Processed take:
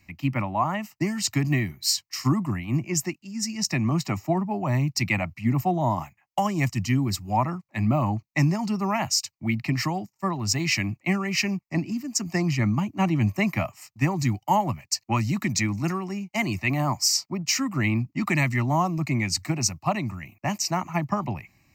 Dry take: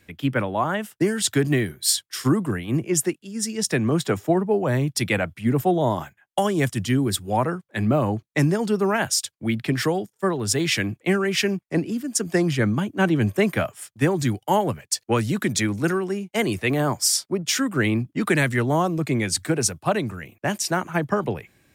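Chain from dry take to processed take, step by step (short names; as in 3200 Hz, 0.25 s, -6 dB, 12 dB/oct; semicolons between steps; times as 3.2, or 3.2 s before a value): fixed phaser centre 2300 Hz, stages 8; gain +1 dB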